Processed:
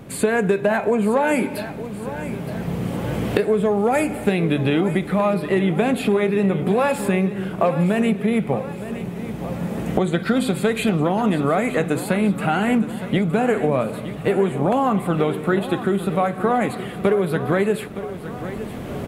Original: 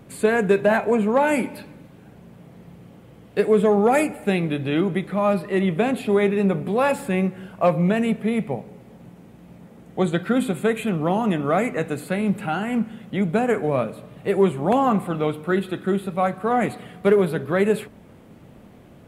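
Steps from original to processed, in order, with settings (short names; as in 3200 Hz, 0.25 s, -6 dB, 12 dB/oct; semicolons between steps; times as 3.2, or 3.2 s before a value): recorder AGC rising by 9.1 dB/s; 10.22–11 bell 4600 Hz +11 dB 0.55 oct; compressor, threshold -22 dBFS, peak gain reduction 10 dB; feedback echo 0.916 s, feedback 58%, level -13 dB; gain +6.5 dB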